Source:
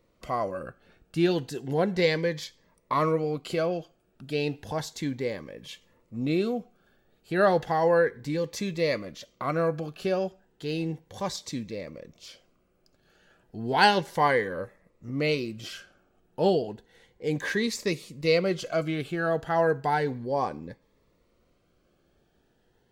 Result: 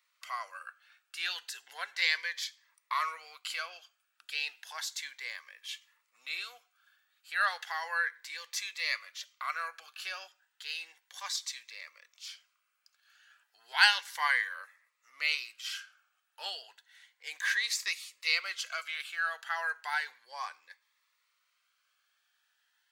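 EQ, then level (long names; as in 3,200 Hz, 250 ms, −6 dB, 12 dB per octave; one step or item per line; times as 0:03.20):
high-pass filter 1,300 Hz 24 dB per octave
+2.0 dB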